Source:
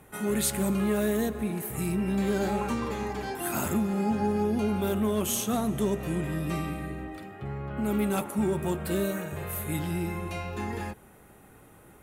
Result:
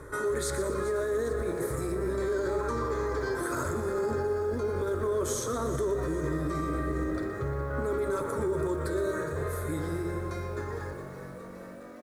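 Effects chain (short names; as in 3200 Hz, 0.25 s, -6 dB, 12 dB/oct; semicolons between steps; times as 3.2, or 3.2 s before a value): ending faded out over 3.84 s; in parallel at 0 dB: compressor, threshold -39 dBFS, peak gain reduction 15 dB; on the sum: air absorption 80 m; fixed phaser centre 760 Hz, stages 6; frequency-shifting echo 0.413 s, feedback 57%, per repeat +48 Hz, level -16 dB; limiter -29.5 dBFS, peak gain reduction 10 dB; bell 2200 Hz -4 dB 0.53 oct; de-hum 175.5 Hz, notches 28; reverse; upward compressor, threshold -41 dBFS; reverse; lo-fi delay 0.119 s, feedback 55%, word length 10-bit, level -11.5 dB; gain +7 dB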